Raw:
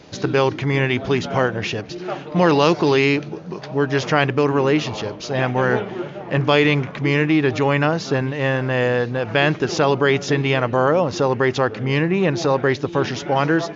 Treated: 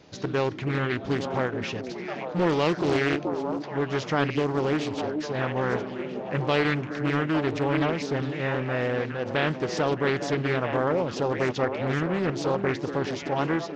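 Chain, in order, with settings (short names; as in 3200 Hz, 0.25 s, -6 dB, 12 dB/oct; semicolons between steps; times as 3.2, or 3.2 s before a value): delay with a stepping band-pass 0.427 s, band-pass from 270 Hz, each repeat 1.4 oct, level -2 dB; Doppler distortion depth 0.51 ms; gain -8.5 dB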